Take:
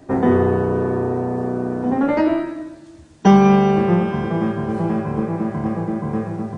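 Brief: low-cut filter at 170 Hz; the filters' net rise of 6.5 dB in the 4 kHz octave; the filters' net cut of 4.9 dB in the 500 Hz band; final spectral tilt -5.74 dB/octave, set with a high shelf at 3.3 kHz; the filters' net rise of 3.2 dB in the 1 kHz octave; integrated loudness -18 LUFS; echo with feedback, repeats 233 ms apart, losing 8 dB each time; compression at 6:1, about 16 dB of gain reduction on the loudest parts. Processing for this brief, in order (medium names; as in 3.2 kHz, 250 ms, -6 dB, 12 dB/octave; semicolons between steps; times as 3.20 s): high-pass 170 Hz; peaking EQ 500 Hz -8.5 dB; peaking EQ 1 kHz +7 dB; treble shelf 3.3 kHz +7 dB; peaking EQ 4 kHz +4 dB; compression 6:1, threshold -26 dBFS; feedback delay 233 ms, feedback 40%, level -8 dB; trim +11.5 dB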